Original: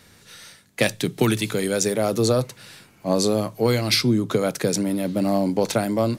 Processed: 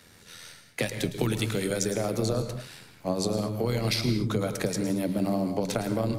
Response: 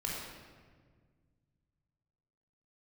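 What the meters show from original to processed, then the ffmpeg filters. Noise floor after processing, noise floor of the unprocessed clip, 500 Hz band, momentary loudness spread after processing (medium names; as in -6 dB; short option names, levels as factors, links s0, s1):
-55 dBFS, -54 dBFS, -7.5 dB, 14 LU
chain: -filter_complex "[0:a]acrossover=split=120[s0][s1];[s1]acompressor=threshold=0.0708:ratio=6[s2];[s0][s2]amix=inputs=2:normalize=0,tremolo=f=84:d=0.571,asplit=2[s3][s4];[1:a]atrim=start_sample=2205,atrim=end_sample=6174,adelay=109[s5];[s4][s5]afir=irnorm=-1:irlink=0,volume=0.316[s6];[s3][s6]amix=inputs=2:normalize=0"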